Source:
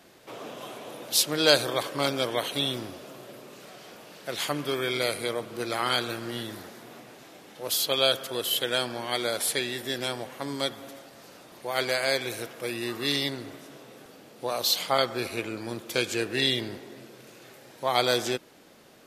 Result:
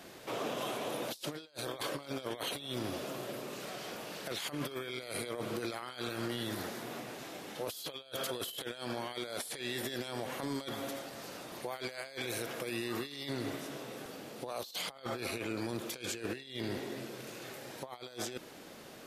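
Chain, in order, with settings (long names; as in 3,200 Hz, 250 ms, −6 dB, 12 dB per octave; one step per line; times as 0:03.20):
compressor whose output falls as the input rises −34 dBFS, ratio −0.5
brickwall limiter −26 dBFS, peak gain reduction 10 dB
level −1.5 dB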